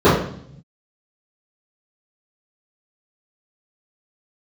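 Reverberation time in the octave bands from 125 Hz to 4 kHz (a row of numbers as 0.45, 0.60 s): 1.5, 1.0, 0.65, 0.60, 0.55, 0.65 s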